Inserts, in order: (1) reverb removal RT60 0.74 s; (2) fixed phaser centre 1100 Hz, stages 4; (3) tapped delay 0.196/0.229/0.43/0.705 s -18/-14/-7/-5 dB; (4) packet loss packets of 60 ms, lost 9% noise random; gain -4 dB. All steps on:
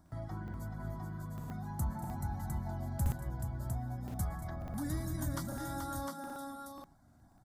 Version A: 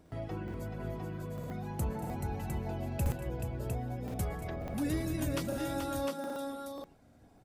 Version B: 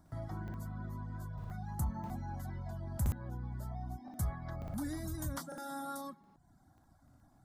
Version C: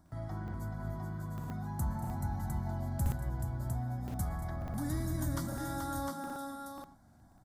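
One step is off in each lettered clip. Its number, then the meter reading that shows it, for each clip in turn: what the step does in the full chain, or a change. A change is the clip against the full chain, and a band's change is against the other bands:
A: 2, 500 Hz band +6.5 dB; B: 3, loudness change -1.5 LU; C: 1, crest factor change -1.5 dB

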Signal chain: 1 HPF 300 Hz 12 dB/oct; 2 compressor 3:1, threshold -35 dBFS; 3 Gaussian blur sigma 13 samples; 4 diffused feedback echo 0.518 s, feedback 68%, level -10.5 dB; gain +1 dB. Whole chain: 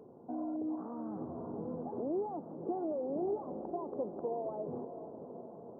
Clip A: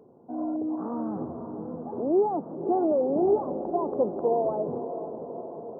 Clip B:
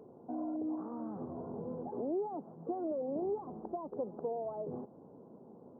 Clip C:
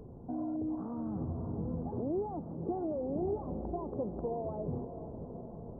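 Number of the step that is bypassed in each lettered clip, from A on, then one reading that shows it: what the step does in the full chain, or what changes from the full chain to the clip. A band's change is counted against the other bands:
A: 2, mean gain reduction 7.0 dB; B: 4, echo-to-direct -8.0 dB to none; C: 1, momentary loudness spread change -1 LU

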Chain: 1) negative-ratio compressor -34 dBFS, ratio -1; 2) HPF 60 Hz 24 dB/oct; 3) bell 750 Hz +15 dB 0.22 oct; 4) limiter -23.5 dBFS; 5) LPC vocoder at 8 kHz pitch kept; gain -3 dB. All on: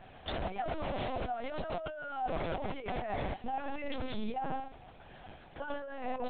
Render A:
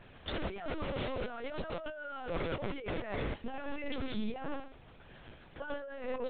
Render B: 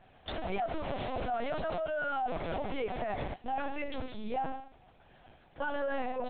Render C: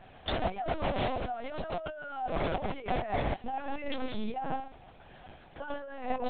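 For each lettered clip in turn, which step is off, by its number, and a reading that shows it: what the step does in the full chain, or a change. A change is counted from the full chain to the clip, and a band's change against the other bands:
3, 1 kHz band -8.0 dB; 1, momentary loudness spread change -7 LU; 4, crest factor change +2.0 dB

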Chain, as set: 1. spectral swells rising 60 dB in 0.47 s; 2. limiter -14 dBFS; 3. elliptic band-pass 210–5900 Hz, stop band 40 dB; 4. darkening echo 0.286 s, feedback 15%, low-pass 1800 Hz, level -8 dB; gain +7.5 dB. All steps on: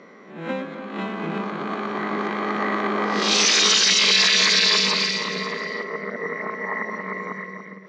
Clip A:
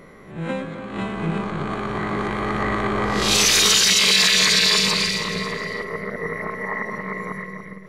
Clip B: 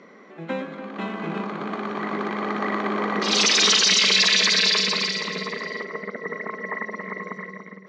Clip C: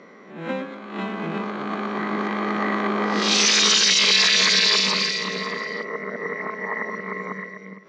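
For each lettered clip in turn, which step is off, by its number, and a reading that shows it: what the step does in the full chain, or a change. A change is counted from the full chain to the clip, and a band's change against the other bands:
3, 125 Hz band +6.5 dB; 1, momentary loudness spread change +1 LU; 4, echo-to-direct -10.0 dB to none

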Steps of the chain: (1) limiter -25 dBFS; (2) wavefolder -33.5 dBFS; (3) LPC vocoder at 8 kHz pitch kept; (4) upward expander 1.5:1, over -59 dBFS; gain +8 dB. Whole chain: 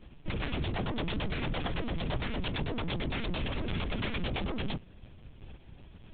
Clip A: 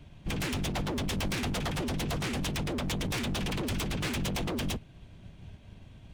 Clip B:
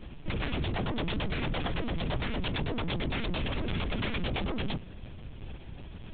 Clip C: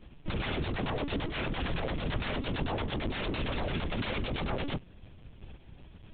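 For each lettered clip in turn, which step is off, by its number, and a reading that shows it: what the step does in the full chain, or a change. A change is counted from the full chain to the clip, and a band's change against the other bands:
3, crest factor change -8.0 dB; 4, momentary loudness spread change -5 LU; 1, mean gain reduction 3.5 dB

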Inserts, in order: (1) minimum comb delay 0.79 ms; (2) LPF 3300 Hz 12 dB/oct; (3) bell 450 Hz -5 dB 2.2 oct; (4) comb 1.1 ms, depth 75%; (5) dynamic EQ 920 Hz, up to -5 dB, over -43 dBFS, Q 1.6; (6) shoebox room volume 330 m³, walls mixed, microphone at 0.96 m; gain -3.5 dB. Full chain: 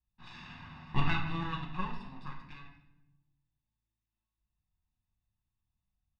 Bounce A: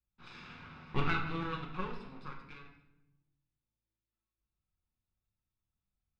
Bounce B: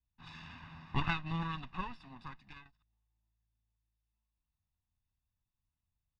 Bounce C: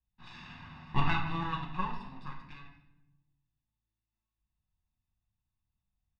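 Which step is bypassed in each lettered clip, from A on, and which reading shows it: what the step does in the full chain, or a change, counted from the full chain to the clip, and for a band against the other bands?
4, 500 Hz band +7.5 dB; 6, loudness change -2.5 LU; 5, loudness change +2.5 LU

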